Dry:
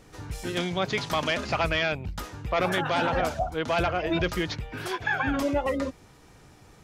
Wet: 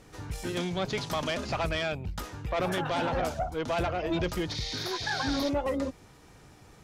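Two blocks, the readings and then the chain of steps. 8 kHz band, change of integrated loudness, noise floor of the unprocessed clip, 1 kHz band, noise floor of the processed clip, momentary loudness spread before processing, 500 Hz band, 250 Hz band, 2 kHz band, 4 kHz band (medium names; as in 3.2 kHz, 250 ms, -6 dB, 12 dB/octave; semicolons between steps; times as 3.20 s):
0.0 dB, -3.5 dB, -54 dBFS, -4.0 dB, -55 dBFS, 9 LU, -3.0 dB, -2.0 dB, -6.5 dB, -2.0 dB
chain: spectral replace 4.57–5.46 s, 1.8–10 kHz before; dynamic bell 1.8 kHz, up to -5 dB, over -39 dBFS, Q 0.78; valve stage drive 21 dB, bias 0.3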